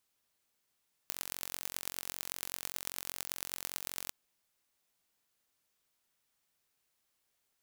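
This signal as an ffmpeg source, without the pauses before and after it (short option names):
-f lavfi -i "aevalsrc='0.398*eq(mod(n,978),0)*(0.5+0.5*eq(mod(n,4890),0))':d=3.01:s=44100"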